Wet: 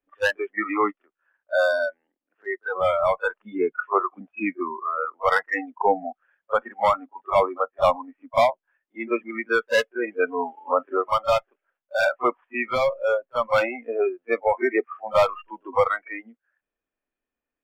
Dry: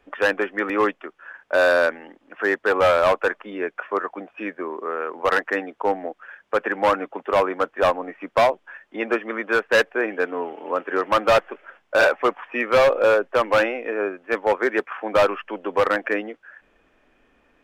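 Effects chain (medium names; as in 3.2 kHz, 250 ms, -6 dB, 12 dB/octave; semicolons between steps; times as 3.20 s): gain riding within 5 dB 0.5 s; pre-echo 39 ms -14.5 dB; spectral noise reduction 28 dB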